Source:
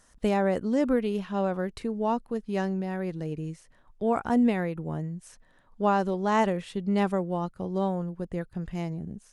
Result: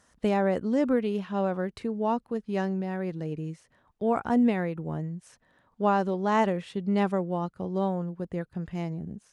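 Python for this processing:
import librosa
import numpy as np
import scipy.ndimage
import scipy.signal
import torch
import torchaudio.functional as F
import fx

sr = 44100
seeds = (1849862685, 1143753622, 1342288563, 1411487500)

y = scipy.signal.sosfilt(scipy.signal.butter(2, 66.0, 'highpass', fs=sr, output='sos'), x)
y = fx.high_shelf(y, sr, hz=7300.0, db=-8.5)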